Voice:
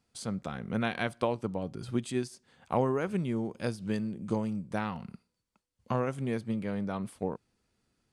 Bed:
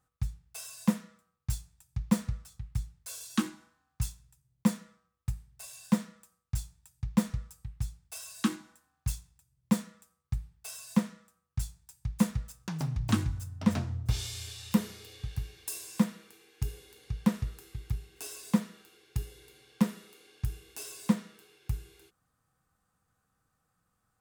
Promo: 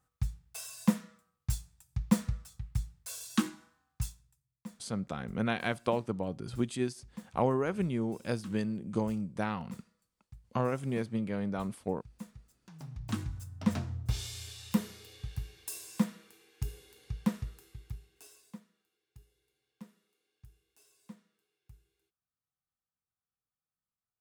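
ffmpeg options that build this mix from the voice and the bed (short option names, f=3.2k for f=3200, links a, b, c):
-filter_complex "[0:a]adelay=4650,volume=-0.5dB[a];[1:a]volume=16.5dB,afade=t=out:st=3.76:d=0.84:silence=0.105925,afade=t=in:st=12.65:d=0.97:silence=0.149624,afade=t=out:st=17.11:d=1.48:silence=0.0944061[b];[a][b]amix=inputs=2:normalize=0"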